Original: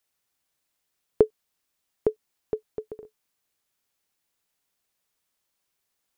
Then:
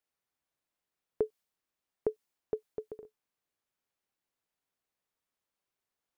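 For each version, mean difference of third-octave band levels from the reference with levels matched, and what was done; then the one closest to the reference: 2.0 dB: low shelf 170 Hz -3.5 dB; limiter -14 dBFS, peak gain reduction 8 dB; short-mantissa float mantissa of 8-bit; mismatched tape noise reduction decoder only; gain -4.5 dB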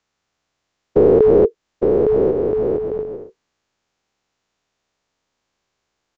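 6.0 dB: spectral dilation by 0.48 s; downsampling 16000 Hz; high shelf 2000 Hz -8 dB; in parallel at +3 dB: compressor, threshold -21 dBFS, peak gain reduction 11.5 dB; on the sum: gain -2 dB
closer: first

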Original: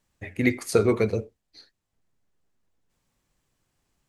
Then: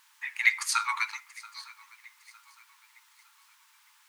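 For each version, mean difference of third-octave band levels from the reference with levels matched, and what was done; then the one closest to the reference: 18.5 dB: LPF 9200 Hz; added noise pink -65 dBFS; brick-wall FIR high-pass 840 Hz; on a send: swung echo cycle 0.908 s, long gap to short 3:1, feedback 37%, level -21 dB; on the sum: gain +6 dB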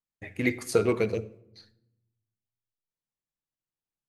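2.5 dB: rattling part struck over -24 dBFS, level -29 dBFS; gate with hold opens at -44 dBFS; low shelf 110 Hz -5.5 dB; shoebox room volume 2500 m³, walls furnished, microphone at 0.58 m; gain -3 dB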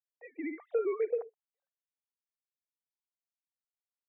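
13.5 dB: sine-wave speech; gate with hold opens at -56 dBFS; limiter -19 dBFS, peak gain reduction 11.5 dB; band-pass 720 Hz, Q 3.4; gain +7 dB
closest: second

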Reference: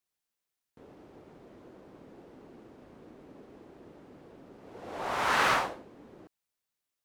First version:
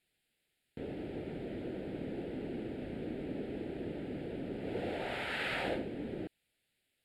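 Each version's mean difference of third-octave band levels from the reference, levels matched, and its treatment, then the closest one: 10.0 dB: LPF 8900 Hz 12 dB/oct; reverse; compressor 20:1, threshold -41 dBFS, peak gain reduction 20.5 dB; reverse; fixed phaser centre 2600 Hz, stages 4; gain +13.5 dB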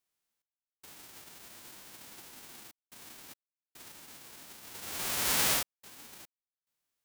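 13.5 dB: spectral whitening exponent 0.1; in parallel at -1 dB: compressor, threshold -36 dBFS, peak gain reduction 13.5 dB; on the sum: step gate "xx..xxxxxxxxx." 72 bpm -60 dB; gain -4 dB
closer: first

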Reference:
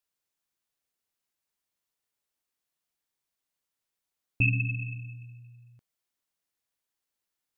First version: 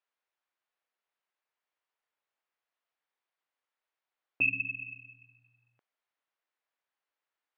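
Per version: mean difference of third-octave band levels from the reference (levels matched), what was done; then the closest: 2.5 dB: BPF 550–2300 Hz; gain +4 dB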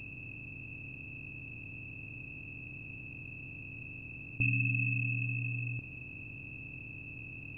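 6.5 dB: per-bin compression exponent 0.2; gain -8 dB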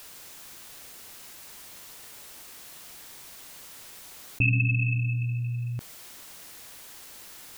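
4.0 dB: fast leveller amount 70%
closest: first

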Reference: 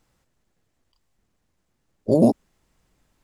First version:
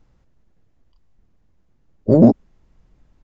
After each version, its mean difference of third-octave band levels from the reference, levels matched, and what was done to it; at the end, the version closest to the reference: 3.5 dB: tilt -2.5 dB/oct; in parallel at -12 dB: soft clip -10.5 dBFS, distortion -12 dB; on the sum: downsampling 16000 Hz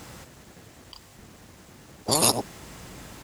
16.5 dB: HPF 66 Hz; echo 94 ms -23.5 dB; spectral compressor 10:1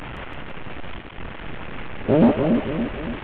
10.0 dB: delta modulation 16 kbps, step -29 dBFS; split-band echo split 570 Hz, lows 0.283 s, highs 0.167 s, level -4.5 dB; Doppler distortion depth 0.18 ms; gain +2 dB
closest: first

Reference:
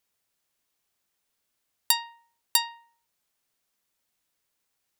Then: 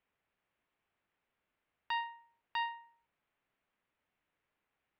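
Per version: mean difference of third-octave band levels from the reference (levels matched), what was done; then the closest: 6.0 dB: inverse Chebyshev low-pass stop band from 8200 Hz, stop band 60 dB; limiter -27.5 dBFS, peak gain reduction 9 dB; gain +1 dB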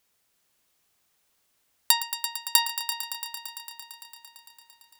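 9.5 dB: in parallel at +1 dB: compressor, threshold -32 dBFS, peak gain reduction 14.5 dB; on the sum: multi-head echo 0.113 s, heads all three, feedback 71%, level -14 dB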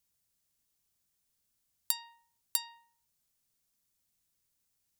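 2.0 dB: tone controls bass +13 dB, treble +9 dB; compressor 12:1, threshold -18 dBFS, peak gain reduction 10.5 dB; gain -8.5 dB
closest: third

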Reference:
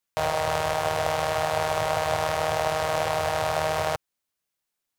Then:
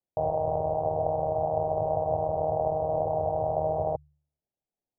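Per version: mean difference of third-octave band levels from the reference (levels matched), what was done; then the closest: 17.5 dB: steep low-pass 820 Hz 48 dB/oct; de-hum 73.2 Hz, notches 2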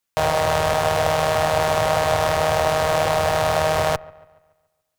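1.5 dB: in parallel at -8.5 dB: Schmitt trigger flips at -33 dBFS; on the sum: dark delay 0.142 s, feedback 46%, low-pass 2000 Hz, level -22 dB; gain +4 dB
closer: second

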